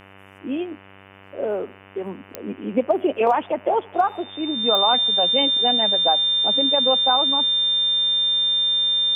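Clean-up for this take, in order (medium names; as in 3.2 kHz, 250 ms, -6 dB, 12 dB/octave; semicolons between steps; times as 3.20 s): de-click; de-hum 97.3 Hz, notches 31; band-stop 3.6 kHz, Q 30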